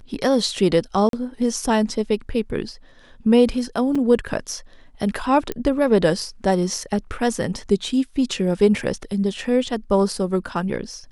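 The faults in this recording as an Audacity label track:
1.090000	1.130000	drop-out 42 ms
3.950000	3.950000	drop-out 4.5 ms
5.520000	5.520000	click −12 dBFS

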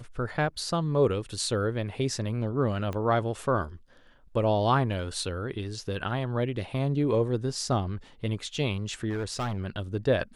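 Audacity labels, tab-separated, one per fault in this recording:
2.930000	2.930000	click −21 dBFS
9.090000	9.590000	clipping −26.5 dBFS

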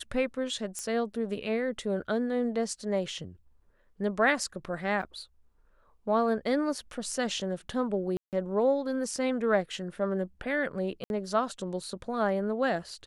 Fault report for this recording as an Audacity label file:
0.790000	0.790000	click −22 dBFS
5.020000	5.030000	drop-out 6.9 ms
8.170000	8.330000	drop-out 158 ms
11.040000	11.100000	drop-out 61 ms

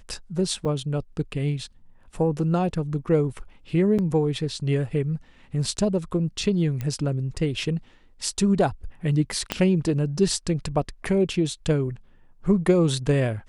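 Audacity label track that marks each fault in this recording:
0.650000	0.650000	drop-out 3.8 ms
3.980000	3.990000	drop-out 6.9 ms
6.810000	6.810000	click −17 dBFS
9.520000	9.520000	click −8 dBFS

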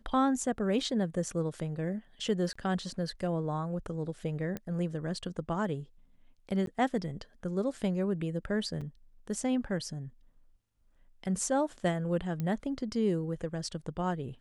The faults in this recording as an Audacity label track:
2.530000	2.560000	drop-out 25 ms
4.570000	4.570000	click −22 dBFS
6.660000	6.670000	drop-out 12 ms
8.810000	8.820000	drop-out 5.6 ms
12.400000	12.400000	click −22 dBFS

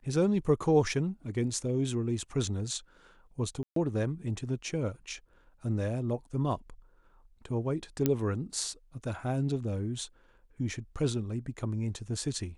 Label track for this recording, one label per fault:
3.630000	3.760000	drop-out 133 ms
8.060000	8.060000	click −12 dBFS

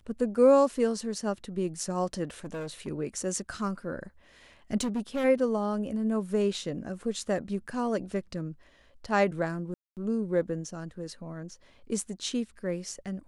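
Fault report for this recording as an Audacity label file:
2.270000	2.880000	clipping −33 dBFS
4.800000	5.250000	clipping −26 dBFS
9.740000	9.970000	drop-out 228 ms

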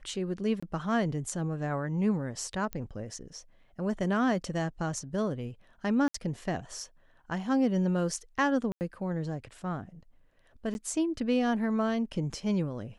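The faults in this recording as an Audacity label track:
0.600000	0.620000	drop-out 25 ms
2.730000	2.730000	click −21 dBFS
6.080000	6.140000	drop-out 64 ms
8.720000	8.810000	drop-out 89 ms
10.740000	10.750000	drop-out 11 ms

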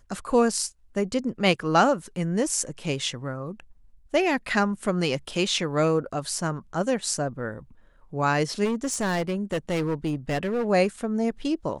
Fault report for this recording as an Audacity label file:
8.640000	10.670000	clipping −22 dBFS

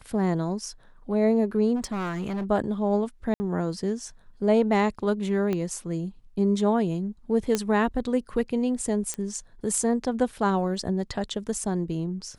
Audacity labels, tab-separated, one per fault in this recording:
1.750000	2.450000	clipping −26 dBFS
3.340000	3.400000	drop-out 60 ms
5.530000	5.530000	click −16 dBFS
7.550000	7.550000	click −10 dBFS
9.140000	9.140000	click −16 dBFS

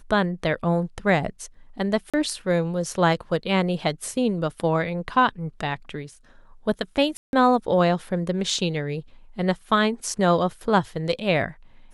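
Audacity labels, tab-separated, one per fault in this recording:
2.100000	2.140000	drop-out 36 ms
7.170000	7.330000	drop-out 161 ms

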